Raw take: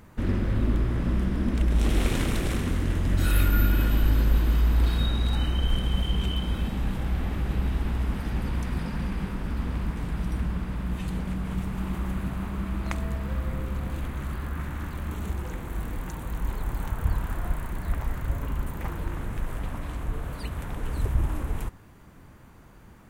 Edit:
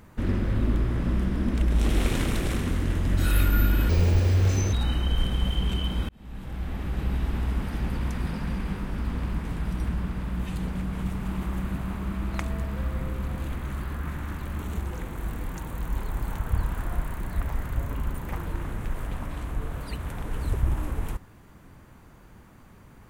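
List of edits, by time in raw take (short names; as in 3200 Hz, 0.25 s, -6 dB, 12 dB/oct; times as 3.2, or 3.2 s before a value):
3.89–5.25 speed 162%
6.61–7.99 fade in equal-power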